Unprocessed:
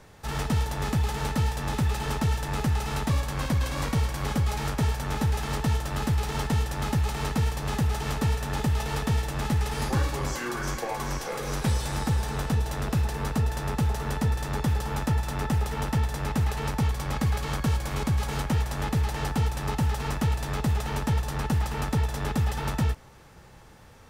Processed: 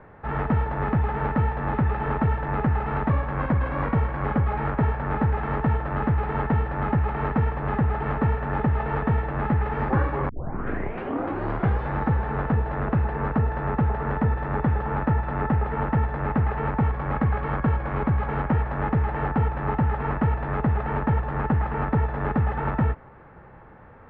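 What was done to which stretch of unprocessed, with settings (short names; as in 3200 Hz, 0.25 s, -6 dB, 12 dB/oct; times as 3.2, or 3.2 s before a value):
10.29 tape start 1.54 s
whole clip: inverse Chebyshev low-pass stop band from 9300 Hz, stop band 80 dB; low shelf 150 Hz -5.5 dB; gain +6 dB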